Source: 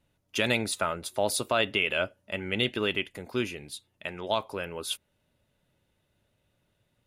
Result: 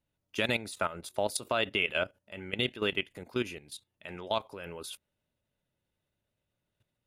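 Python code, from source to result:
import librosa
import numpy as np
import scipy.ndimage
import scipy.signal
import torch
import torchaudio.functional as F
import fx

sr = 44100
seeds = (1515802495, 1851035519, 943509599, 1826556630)

y = fx.level_steps(x, sr, step_db=14)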